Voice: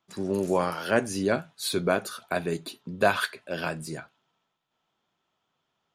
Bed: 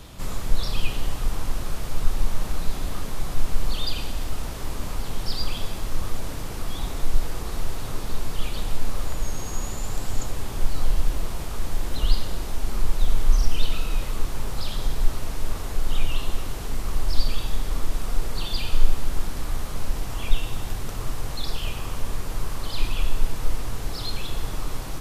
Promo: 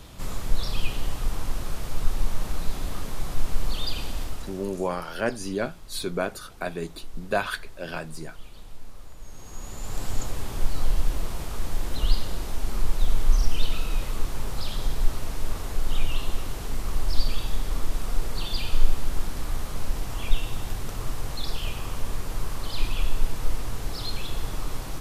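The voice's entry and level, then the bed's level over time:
4.30 s, -3.0 dB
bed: 4.21 s -2 dB
4.9 s -17 dB
9.16 s -17 dB
10.02 s -1.5 dB

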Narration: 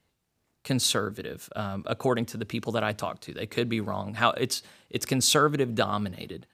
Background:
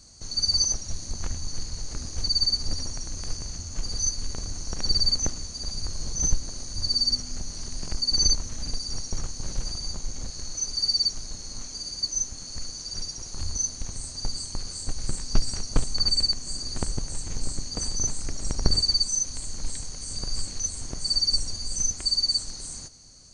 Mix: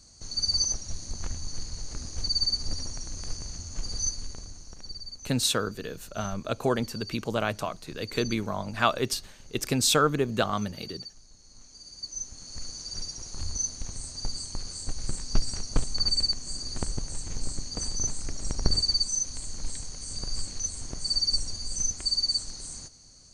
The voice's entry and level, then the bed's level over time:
4.60 s, -0.5 dB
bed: 4.07 s -3 dB
5.02 s -18.5 dB
11.32 s -18.5 dB
12.69 s -2.5 dB

